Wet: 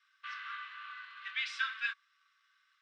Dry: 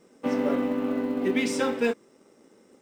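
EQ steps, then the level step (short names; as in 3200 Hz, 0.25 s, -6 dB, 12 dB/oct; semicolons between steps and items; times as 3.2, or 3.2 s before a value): rippled Chebyshev high-pass 1100 Hz, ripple 9 dB; synth low-pass 2900 Hz, resonance Q 1.5; +1.0 dB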